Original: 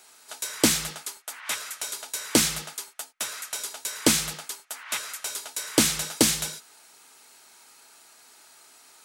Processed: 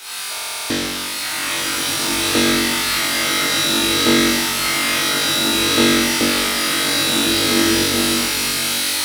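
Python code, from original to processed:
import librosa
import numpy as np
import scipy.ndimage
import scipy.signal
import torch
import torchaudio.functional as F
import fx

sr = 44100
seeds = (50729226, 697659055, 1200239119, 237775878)

p1 = x + 0.5 * 10.0 ** (-17.5 / 20.0) * np.diff(np.sign(x), prepend=np.sign(x[:1]))
p2 = fx.recorder_agc(p1, sr, target_db=-11.5, rise_db_per_s=45.0, max_gain_db=30)
p3 = fx.peak_eq(p2, sr, hz=7100.0, db=-12.5, octaves=0.8)
p4 = fx.mod_noise(p3, sr, seeds[0], snr_db=26)
p5 = fx.air_absorb(p4, sr, metres=74.0)
p6 = p5 + fx.room_flutter(p5, sr, wall_m=3.6, rt60_s=1.2, dry=0)
p7 = fx.buffer_glitch(p6, sr, at_s=(0.33,), block=2048, repeats=7)
p8 = fx.rev_bloom(p7, sr, seeds[1], attack_ms=1730, drr_db=-4.5)
y = p8 * librosa.db_to_amplitude(-1.0)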